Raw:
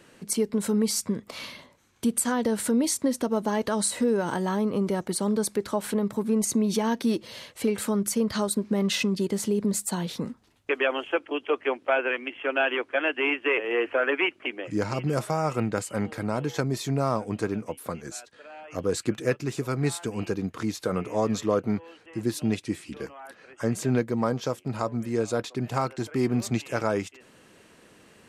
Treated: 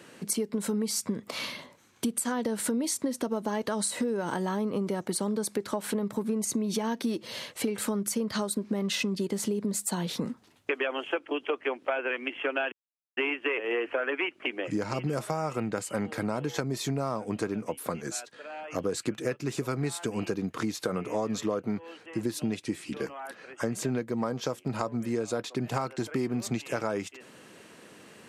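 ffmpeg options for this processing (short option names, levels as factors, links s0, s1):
-filter_complex "[0:a]asplit=3[s0][s1][s2];[s0]atrim=end=12.72,asetpts=PTS-STARTPTS,afade=t=out:st=12.716:d=0.004:c=hsin[s3];[s1]atrim=start=12.72:end=13.17,asetpts=PTS-STARTPTS,volume=0[s4];[s2]atrim=start=13.17,asetpts=PTS-STARTPTS,afade=t=in:d=0.004:c=hsin[s5];[s3][s4][s5]concat=n=3:v=0:a=1,highpass=120,acompressor=threshold=0.0316:ratio=6,volume=1.5"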